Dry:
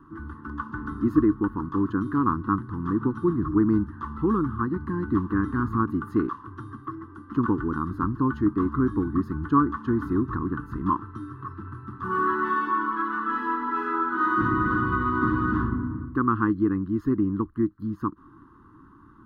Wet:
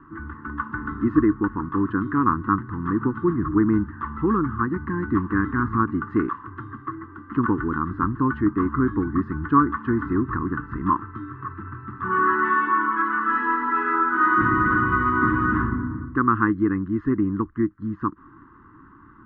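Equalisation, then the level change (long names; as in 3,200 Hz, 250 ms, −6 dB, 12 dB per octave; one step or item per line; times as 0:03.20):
low-pass with resonance 2,100 Hz, resonance Q 3
+1.5 dB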